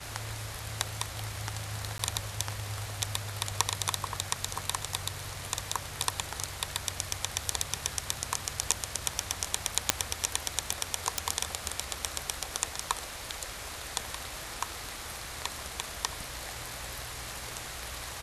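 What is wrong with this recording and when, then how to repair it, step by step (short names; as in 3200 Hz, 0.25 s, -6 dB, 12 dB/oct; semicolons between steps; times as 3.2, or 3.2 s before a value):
1.98–1.99 gap 13 ms
9.9 pop -2 dBFS
11.18 pop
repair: de-click; interpolate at 1.98, 13 ms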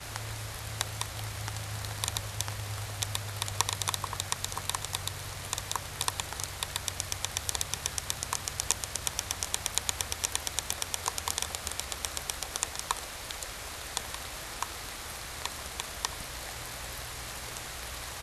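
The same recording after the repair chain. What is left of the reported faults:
none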